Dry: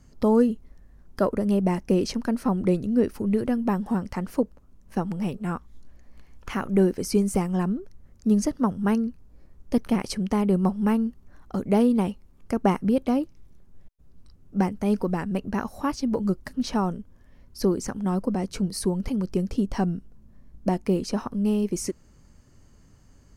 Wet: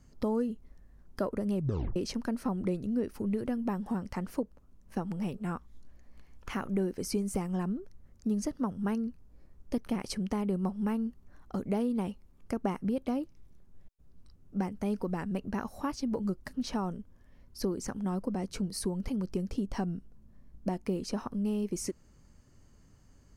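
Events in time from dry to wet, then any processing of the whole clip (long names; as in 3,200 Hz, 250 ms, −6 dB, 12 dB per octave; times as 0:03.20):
0:01.55: tape stop 0.41 s
whole clip: downward compressor 2.5 to 1, threshold −24 dBFS; level −5 dB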